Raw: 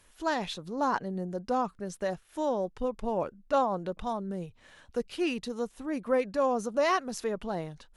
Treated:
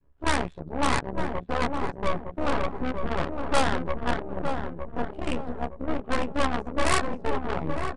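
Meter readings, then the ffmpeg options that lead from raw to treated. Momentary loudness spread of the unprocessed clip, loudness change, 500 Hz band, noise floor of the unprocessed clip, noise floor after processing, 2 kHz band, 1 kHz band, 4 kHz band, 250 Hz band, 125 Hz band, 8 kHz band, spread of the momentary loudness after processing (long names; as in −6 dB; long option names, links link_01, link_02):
8 LU, +2.5 dB, −0.5 dB, −61 dBFS, −45 dBFS, +7.5 dB, +3.0 dB, +6.5 dB, +2.5 dB, +8.5 dB, +7.0 dB, 8 LU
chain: -filter_complex "[0:a]adynamicequalizer=threshold=0.00794:dfrequency=670:dqfactor=1.7:tfrequency=670:tqfactor=1.7:attack=5:release=100:ratio=0.375:range=2.5:mode=cutabove:tftype=bell,aecho=1:1:7.2:0.93,flanger=delay=17.5:depth=7.8:speed=0.63,tremolo=f=71:d=0.71,acrossover=split=830[link_01][link_02];[link_01]asoftclip=type=hard:threshold=-33.5dB[link_03];[link_03][link_02]amix=inputs=2:normalize=0,adynamicsmooth=sensitivity=3.5:basefreq=580,aeval=exprs='0.119*(cos(1*acos(clip(val(0)/0.119,-1,1)))-cos(1*PI/2))+0.0422*(cos(8*acos(clip(val(0)/0.119,-1,1)))-cos(8*PI/2))':channel_layout=same,aexciter=amount=2.8:drive=3.6:freq=8200,asplit=2[link_04][link_05];[link_05]adelay=912,lowpass=frequency=1100:poles=1,volume=-4.5dB,asplit=2[link_06][link_07];[link_07]adelay=912,lowpass=frequency=1100:poles=1,volume=0.42,asplit=2[link_08][link_09];[link_09]adelay=912,lowpass=frequency=1100:poles=1,volume=0.42,asplit=2[link_10][link_11];[link_11]adelay=912,lowpass=frequency=1100:poles=1,volume=0.42,asplit=2[link_12][link_13];[link_13]adelay=912,lowpass=frequency=1100:poles=1,volume=0.42[link_14];[link_06][link_08][link_10][link_12][link_14]amix=inputs=5:normalize=0[link_15];[link_04][link_15]amix=inputs=2:normalize=0,aresample=22050,aresample=44100,volume=5dB"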